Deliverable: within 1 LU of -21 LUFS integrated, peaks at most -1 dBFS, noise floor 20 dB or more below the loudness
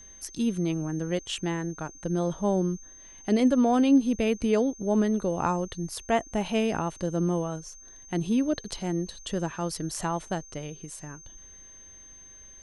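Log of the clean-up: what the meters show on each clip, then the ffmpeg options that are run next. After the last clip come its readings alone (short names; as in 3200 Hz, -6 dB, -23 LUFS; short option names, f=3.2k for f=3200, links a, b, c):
steady tone 6300 Hz; tone level -47 dBFS; loudness -27.5 LUFS; peak -12.0 dBFS; loudness target -21.0 LUFS
-> -af "bandreject=f=6.3k:w=30"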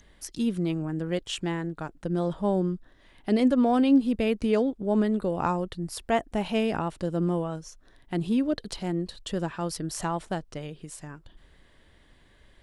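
steady tone none; loudness -27.5 LUFS; peak -12.0 dBFS; loudness target -21.0 LUFS
-> -af "volume=6.5dB"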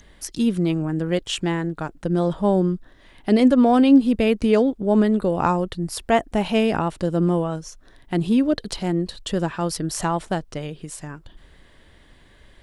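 loudness -21.0 LUFS; peak -5.5 dBFS; noise floor -52 dBFS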